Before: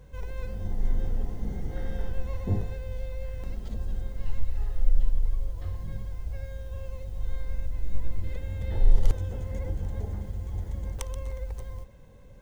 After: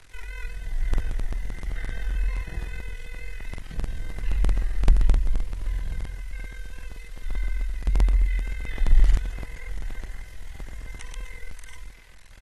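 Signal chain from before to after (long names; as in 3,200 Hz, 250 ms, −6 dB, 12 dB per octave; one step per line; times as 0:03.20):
octave-band graphic EQ 125/250/500/1,000/2,000 Hz +3/−9/−10/−5/+12 dB
bit reduction 9 bits
multi-tap delay 215/677 ms −18/−18.5 dB
amplitude modulation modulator 42 Hz, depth 65%
parametric band 230 Hz −7 dB 2.1 octaves, from 0:03.69 +6 dB, from 0:06.20 −12 dB
frequency shifter −48 Hz
regular buffer underruns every 0.13 s, samples 2,048, repeat, from 0:00.89
level +5 dB
AAC 32 kbit/s 44,100 Hz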